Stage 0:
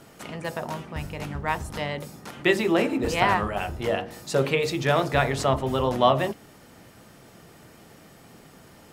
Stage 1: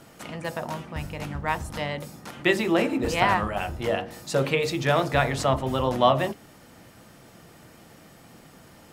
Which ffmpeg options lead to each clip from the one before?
ffmpeg -i in.wav -af "bandreject=frequency=410:width=12" out.wav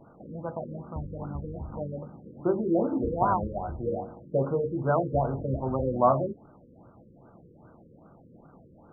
ffmpeg -i in.wav -af "afftfilt=real='re*lt(b*sr/1024,530*pow(1600/530,0.5+0.5*sin(2*PI*2.5*pts/sr)))':imag='im*lt(b*sr/1024,530*pow(1600/530,0.5+0.5*sin(2*PI*2.5*pts/sr)))':win_size=1024:overlap=0.75,volume=-2dB" out.wav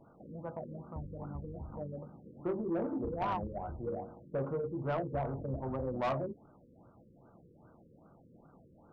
ffmpeg -i in.wav -af "asoftclip=type=tanh:threshold=-21dB,volume=-6.5dB" out.wav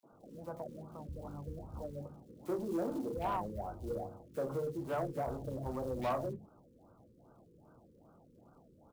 ffmpeg -i in.wav -filter_complex "[0:a]acrossover=split=120|940[link_01][link_02][link_03];[link_02]acrusher=bits=6:mode=log:mix=0:aa=0.000001[link_04];[link_01][link_04][link_03]amix=inputs=3:normalize=0,acrossover=split=160|2200[link_05][link_06][link_07];[link_06]adelay=30[link_08];[link_05]adelay=120[link_09];[link_09][link_08][link_07]amix=inputs=3:normalize=0,volume=-1dB" out.wav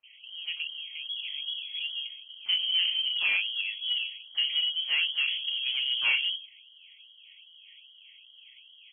ffmpeg -i in.wav -af "lowpass=frequency=2900:width_type=q:width=0.5098,lowpass=frequency=2900:width_type=q:width=0.6013,lowpass=frequency=2900:width_type=q:width=0.9,lowpass=frequency=2900:width_type=q:width=2.563,afreqshift=-3400,volume=8.5dB" out.wav

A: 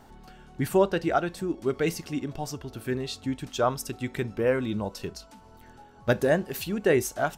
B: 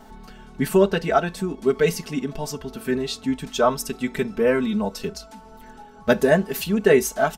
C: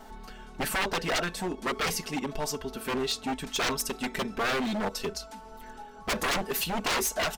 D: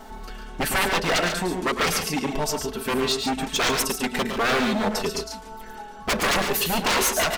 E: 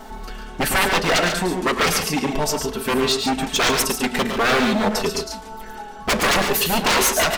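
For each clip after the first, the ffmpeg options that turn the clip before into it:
ffmpeg -i in.wav -af "aecho=1:1:4.6:0.95,volume=3dB" out.wav
ffmpeg -i in.wav -af "aeval=exprs='0.0841*(abs(mod(val(0)/0.0841+3,4)-2)-1)':channel_layout=same,equalizer=frequency=140:width=0.7:gain=-7.5" out.wav
ffmpeg -i in.wav -af "aecho=1:1:107|140:0.398|0.398,volume=5.5dB" out.wav
ffmpeg -i in.wav -af "flanger=delay=7.6:depth=9.7:regen=-88:speed=0.59:shape=triangular,volume=8.5dB" out.wav

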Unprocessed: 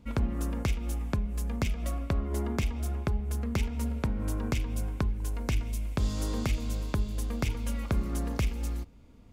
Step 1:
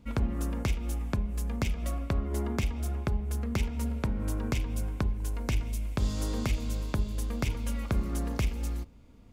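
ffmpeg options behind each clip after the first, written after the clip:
ffmpeg -i in.wav -af "bandreject=frequency=80.5:width_type=h:width=4,bandreject=frequency=161:width_type=h:width=4,bandreject=frequency=241.5:width_type=h:width=4,bandreject=frequency=322:width_type=h:width=4,bandreject=frequency=402.5:width_type=h:width=4,bandreject=frequency=483:width_type=h:width=4,bandreject=frequency=563.5:width_type=h:width=4,bandreject=frequency=644:width_type=h:width=4,bandreject=frequency=724.5:width_type=h:width=4,bandreject=frequency=805:width_type=h:width=4,bandreject=frequency=885.5:width_type=h:width=4,bandreject=frequency=966:width_type=h:width=4,bandreject=frequency=1046.5:width_type=h:width=4" out.wav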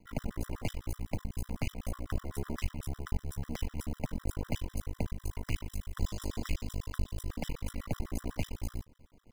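ffmpeg -i in.wav -af "aeval=exprs='max(val(0),0)':channel_layout=same,acrusher=bits=6:mode=log:mix=0:aa=0.000001,afftfilt=real='re*gt(sin(2*PI*8*pts/sr)*(1-2*mod(floor(b*sr/1024/1000),2)),0)':imag='im*gt(sin(2*PI*8*pts/sr)*(1-2*mod(floor(b*sr/1024/1000),2)),0)':win_size=1024:overlap=0.75,volume=1dB" out.wav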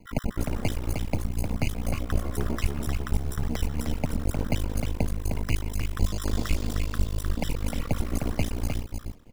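ffmpeg -i in.wav -af "aecho=1:1:307:0.562,volume=7.5dB" out.wav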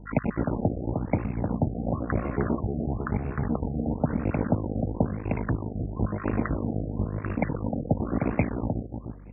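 ffmpeg -i in.wav -af "highpass=110,lowpass=7600,aeval=exprs='val(0)+0.00316*(sin(2*PI*50*n/s)+sin(2*PI*2*50*n/s)/2+sin(2*PI*3*50*n/s)/3+sin(2*PI*4*50*n/s)/4+sin(2*PI*5*50*n/s)/5)':channel_layout=same,afftfilt=real='re*lt(b*sr/1024,770*pow(2800/770,0.5+0.5*sin(2*PI*0.99*pts/sr)))':imag='im*lt(b*sr/1024,770*pow(2800/770,0.5+0.5*sin(2*PI*0.99*pts/sr)))':win_size=1024:overlap=0.75,volume=5.5dB" out.wav

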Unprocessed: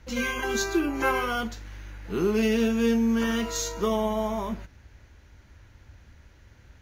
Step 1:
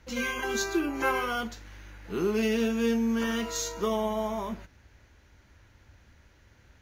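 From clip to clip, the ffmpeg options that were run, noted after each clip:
ffmpeg -i in.wav -af "lowshelf=frequency=150:gain=-5.5,volume=-2dB" out.wav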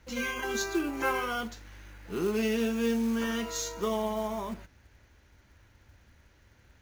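ffmpeg -i in.wav -af "acrusher=bits=5:mode=log:mix=0:aa=0.000001,volume=-2dB" out.wav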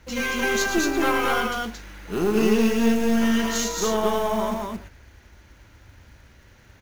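ffmpeg -i in.wav -af "aeval=exprs='(tanh(15.8*val(0)+0.5)-tanh(0.5))/15.8':channel_layout=same,aecho=1:1:113.7|224.5:0.355|0.794,volume=9dB" out.wav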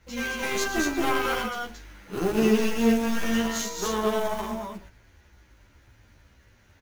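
ffmpeg -i in.wav -filter_complex "[0:a]asplit=2[link_01][link_02];[link_02]acrusher=bits=2:mix=0:aa=0.5,volume=-6dB[link_03];[link_01][link_03]amix=inputs=2:normalize=0,asplit=2[link_04][link_05];[link_05]adelay=11.9,afreqshift=-1.9[link_06];[link_04][link_06]amix=inputs=2:normalize=1,volume=-3dB" out.wav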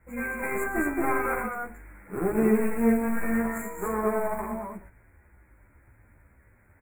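ffmpeg -i in.wav -af "asuperstop=centerf=4300:order=20:qfactor=0.85,volume=-1dB" out.wav

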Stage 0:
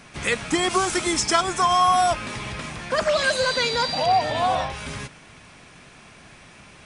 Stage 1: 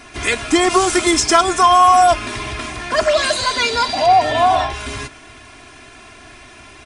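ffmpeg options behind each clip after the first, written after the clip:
ffmpeg -i in.wav -af "aecho=1:1:2.9:0.91,acontrast=30,volume=-1dB" out.wav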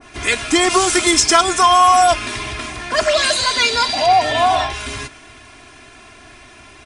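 ffmpeg -i in.wav -af "adynamicequalizer=threshold=0.0631:dfrequency=1600:dqfactor=0.7:tfrequency=1600:tqfactor=0.7:attack=5:release=100:ratio=0.375:range=2.5:mode=boostabove:tftype=highshelf,volume=-1.5dB" out.wav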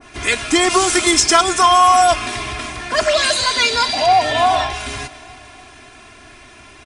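ffmpeg -i in.wav -af "aecho=1:1:285|570|855|1140|1425:0.0841|0.0496|0.0293|0.0173|0.0102" out.wav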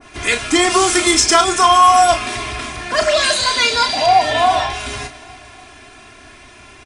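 ffmpeg -i in.wav -filter_complex "[0:a]asplit=2[link_01][link_02];[link_02]adelay=34,volume=-8dB[link_03];[link_01][link_03]amix=inputs=2:normalize=0" out.wav

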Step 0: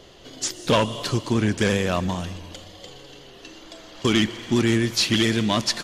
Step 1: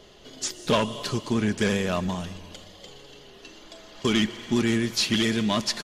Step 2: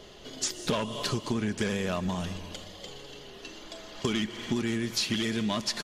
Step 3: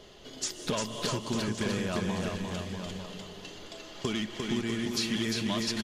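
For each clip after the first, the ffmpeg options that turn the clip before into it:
ffmpeg -i in.wav -af "aecho=1:1:4.8:0.31,volume=-3.5dB" out.wav
ffmpeg -i in.wav -af "acompressor=threshold=-28dB:ratio=6,volume=2dB" out.wav
ffmpeg -i in.wav -af "aecho=1:1:350|647.5|900.4|1115|1298:0.631|0.398|0.251|0.158|0.1,volume=-3dB" out.wav

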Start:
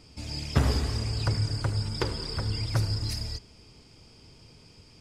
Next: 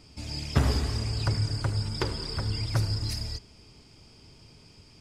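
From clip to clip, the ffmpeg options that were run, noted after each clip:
ffmpeg -i in.wav -af "bandreject=frequency=490:width=14" out.wav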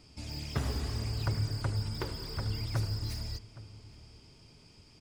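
ffmpeg -i in.wav -filter_complex "[0:a]acrossover=split=2600[link_01][link_02];[link_01]alimiter=limit=-17dB:level=0:latency=1:release=450[link_03];[link_02]asoftclip=type=hard:threshold=-39.5dB[link_04];[link_03][link_04]amix=inputs=2:normalize=0,asplit=2[link_05][link_06];[link_06]adelay=816.3,volume=-17dB,highshelf=frequency=4000:gain=-18.4[link_07];[link_05][link_07]amix=inputs=2:normalize=0,volume=-4dB" out.wav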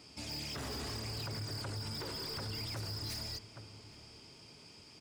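ffmpeg -i in.wav -af "highpass=frequency=290:poles=1,alimiter=level_in=10dB:limit=-24dB:level=0:latency=1:release=38,volume=-10dB,asoftclip=type=tanh:threshold=-39.5dB,volume=4.5dB" out.wav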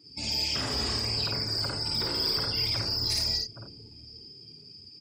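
ffmpeg -i in.wav -af "afftdn=noise_reduction=25:noise_floor=-50,highshelf=frequency=2300:gain=9,aecho=1:1:52.48|84.55:0.891|0.501,volume=5dB" out.wav

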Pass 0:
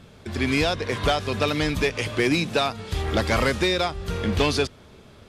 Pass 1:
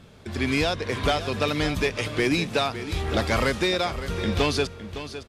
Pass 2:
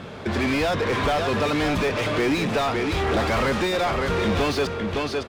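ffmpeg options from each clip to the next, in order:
ffmpeg -i in.wav -af "aecho=1:1:560:0.251,volume=-1.5dB" out.wav
ffmpeg -i in.wav -filter_complex "[0:a]lowshelf=frequency=190:gain=7,asplit=2[link_01][link_02];[link_02]highpass=frequency=720:poles=1,volume=31dB,asoftclip=type=tanh:threshold=-9dB[link_03];[link_01][link_03]amix=inputs=2:normalize=0,lowpass=frequency=1300:poles=1,volume=-6dB,volume=-4.5dB" out.wav

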